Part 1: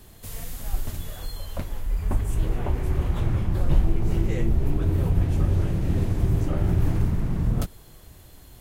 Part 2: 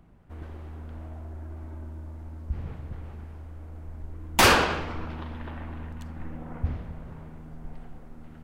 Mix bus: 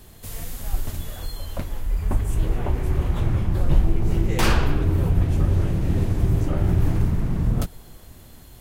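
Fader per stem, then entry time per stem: +2.0, -6.5 dB; 0.00, 0.00 s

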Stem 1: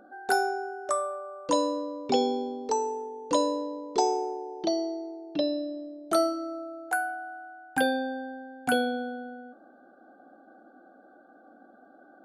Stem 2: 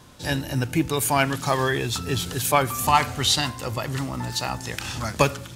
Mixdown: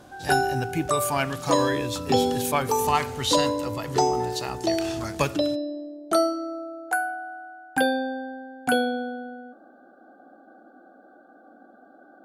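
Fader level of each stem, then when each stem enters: +3.0, -5.0 dB; 0.00, 0.00 s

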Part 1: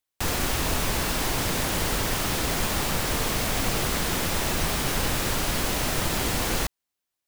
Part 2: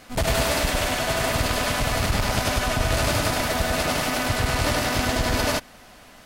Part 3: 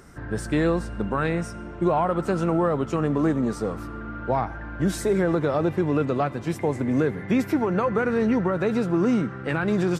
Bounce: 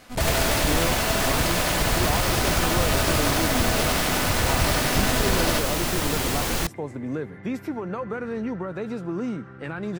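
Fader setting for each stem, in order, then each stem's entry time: +0.5, -2.0, -7.5 dB; 0.00, 0.00, 0.15 s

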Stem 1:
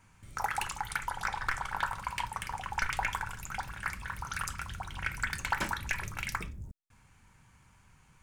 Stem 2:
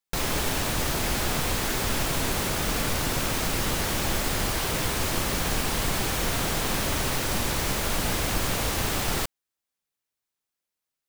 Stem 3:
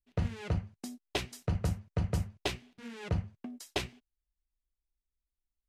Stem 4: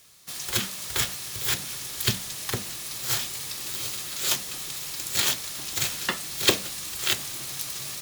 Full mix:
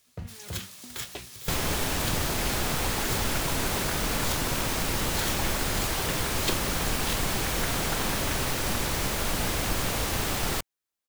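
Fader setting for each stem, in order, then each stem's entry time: -7.5, -1.5, -7.0, -10.5 dB; 2.40, 1.35, 0.00, 0.00 s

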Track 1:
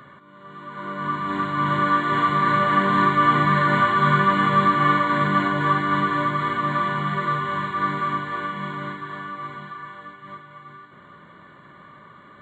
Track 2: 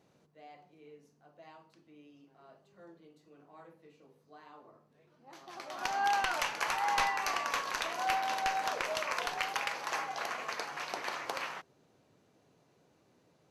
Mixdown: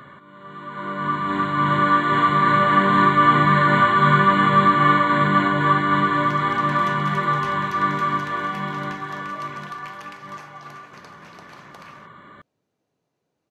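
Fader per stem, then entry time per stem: +2.5, -9.0 dB; 0.00, 0.45 s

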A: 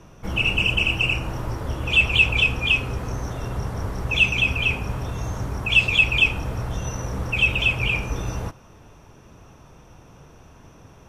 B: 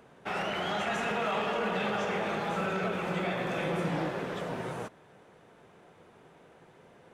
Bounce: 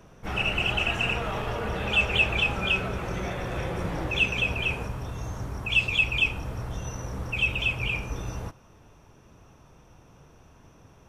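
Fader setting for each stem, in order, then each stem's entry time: -6.0, -2.0 dB; 0.00, 0.00 s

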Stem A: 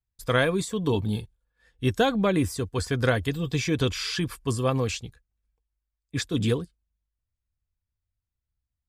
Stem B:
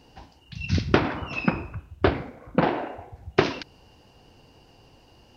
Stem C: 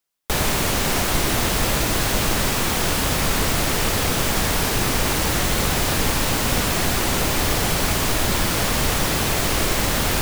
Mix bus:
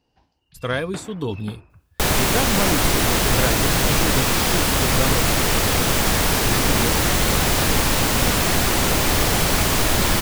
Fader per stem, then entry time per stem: -1.5, -15.5, +2.0 dB; 0.35, 0.00, 1.70 s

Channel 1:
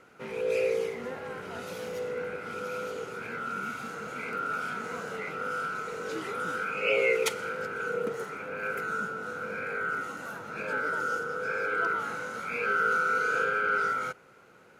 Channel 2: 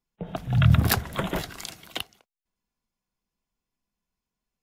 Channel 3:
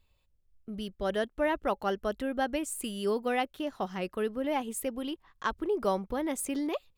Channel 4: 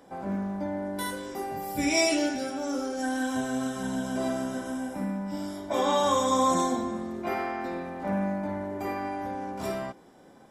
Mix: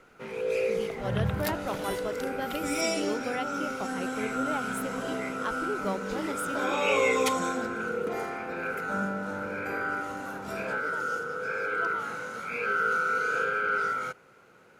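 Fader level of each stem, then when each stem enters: -0.5, -11.5, -4.0, -5.5 dB; 0.00, 0.55, 0.00, 0.85 s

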